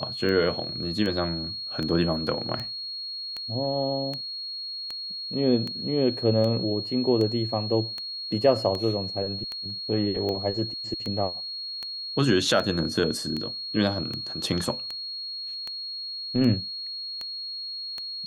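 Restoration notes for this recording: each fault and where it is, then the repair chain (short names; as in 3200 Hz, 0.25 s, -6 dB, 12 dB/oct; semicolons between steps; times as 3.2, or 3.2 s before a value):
tick 78 rpm -19 dBFS
tone 4300 Hz -32 dBFS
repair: de-click; notch 4300 Hz, Q 30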